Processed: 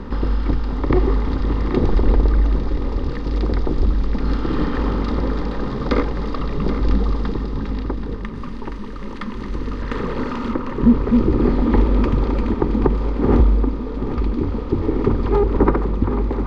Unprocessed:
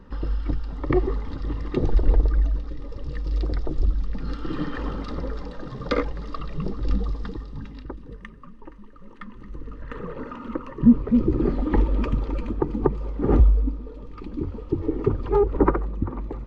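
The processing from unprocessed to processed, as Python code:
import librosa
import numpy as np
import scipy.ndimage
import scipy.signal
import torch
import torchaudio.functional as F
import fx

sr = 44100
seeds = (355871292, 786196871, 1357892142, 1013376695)

y = fx.bin_compress(x, sr, power=0.6)
y = fx.high_shelf(y, sr, hz=2600.0, db=9.5, at=(8.35, 10.52))
y = y + 10.0 ** (-10.5 / 20.0) * np.pad(y, (int(780 * sr / 1000.0), 0))[:len(y)]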